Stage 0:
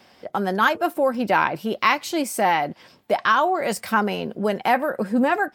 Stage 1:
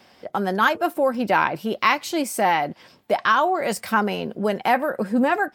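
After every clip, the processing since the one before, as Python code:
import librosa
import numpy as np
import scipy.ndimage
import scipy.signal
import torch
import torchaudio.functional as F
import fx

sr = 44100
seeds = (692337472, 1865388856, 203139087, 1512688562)

y = x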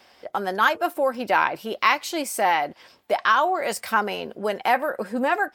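y = fx.peak_eq(x, sr, hz=160.0, db=-11.0, octaves=1.8)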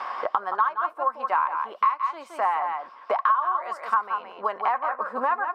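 y = fx.bandpass_q(x, sr, hz=1100.0, q=7.6)
y = y + 10.0 ** (-7.5 / 20.0) * np.pad(y, (int(170 * sr / 1000.0), 0))[:len(y)]
y = fx.band_squash(y, sr, depth_pct=100)
y = y * librosa.db_to_amplitude(5.5)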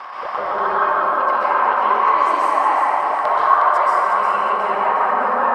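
y = fx.transient(x, sr, attack_db=-5, sustain_db=9)
y = fx.echo_feedback(y, sr, ms=361, feedback_pct=51, wet_db=-6)
y = fx.rev_plate(y, sr, seeds[0], rt60_s=2.5, hf_ratio=0.5, predelay_ms=115, drr_db=-8.0)
y = y * librosa.db_to_amplitude(-1.0)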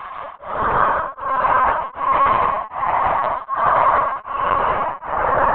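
y = fx.lpc_vocoder(x, sr, seeds[1], excitation='pitch_kept', order=16)
y = y * np.abs(np.cos(np.pi * 1.3 * np.arange(len(y)) / sr))
y = y * librosa.db_to_amplitude(1.5)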